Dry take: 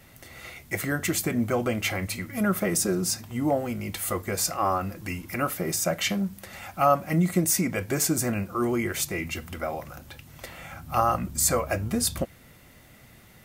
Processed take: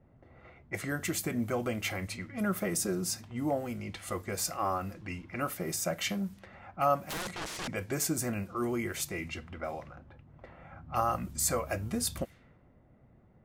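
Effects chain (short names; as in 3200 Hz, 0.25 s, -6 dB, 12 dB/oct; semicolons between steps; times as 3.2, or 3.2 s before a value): 7.05–7.68 wrapped overs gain 25 dB; low-pass opened by the level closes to 640 Hz, open at -25 dBFS; gain -6.5 dB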